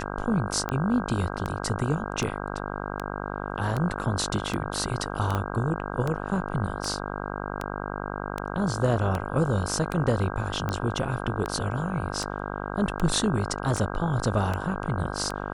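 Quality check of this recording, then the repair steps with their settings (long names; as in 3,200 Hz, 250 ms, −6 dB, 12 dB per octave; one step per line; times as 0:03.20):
mains buzz 50 Hz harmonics 32 −33 dBFS
scratch tick 78 rpm −15 dBFS
0:05.35: click −15 dBFS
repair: click removal
hum removal 50 Hz, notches 32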